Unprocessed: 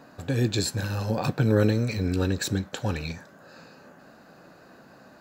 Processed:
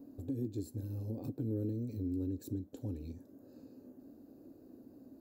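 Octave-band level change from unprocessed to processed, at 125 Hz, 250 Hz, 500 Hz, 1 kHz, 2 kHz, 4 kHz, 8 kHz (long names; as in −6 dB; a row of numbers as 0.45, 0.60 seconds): −14.0 dB, −10.5 dB, −16.5 dB, below −25 dB, below −35 dB, below −30 dB, −25.0 dB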